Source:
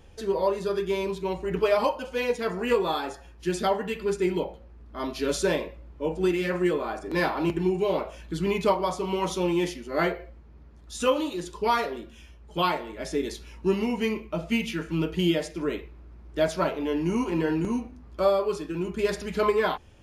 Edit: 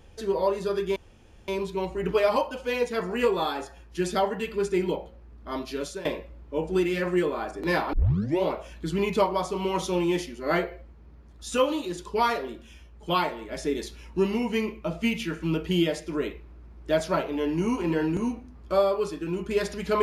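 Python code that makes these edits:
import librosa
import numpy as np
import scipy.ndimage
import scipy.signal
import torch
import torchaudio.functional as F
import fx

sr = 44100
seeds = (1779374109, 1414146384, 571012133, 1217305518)

y = fx.edit(x, sr, fx.insert_room_tone(at_s=0.96, length_s=0.52),
    fx.fade_out_to(start_s=5.0, length_s=0.53, floor_db=-17.0),
    fx.tape_start(start_s=7.41, length_s=0.5), tone=tone)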